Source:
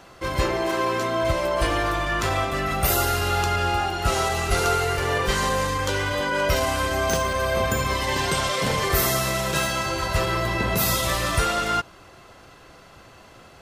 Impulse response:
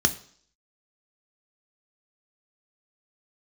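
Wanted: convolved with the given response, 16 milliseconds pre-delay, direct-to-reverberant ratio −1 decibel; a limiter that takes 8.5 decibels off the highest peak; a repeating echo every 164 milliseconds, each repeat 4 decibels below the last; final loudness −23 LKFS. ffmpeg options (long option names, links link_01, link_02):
-filter_complex "[0:a]alimiter=limit=-17.5dB:level=0:latency=1,aecho=1:1:164|328|492|656|820|984|1148|1312|1476:0.631|0.398|0.25|0.158|0.0994|0.0626|0.0394|0.0249|0.0157,asplit=2[link_01][link_02];[1:a]atrim=start_sample=2205,adelay=16[link_03];[link_02][link_03]afir=irnorm=-1:irlink=0,volume=-11dB[link_04];[link_01][link_04]amix=inputs=2:normalize=0,volume=-4dB"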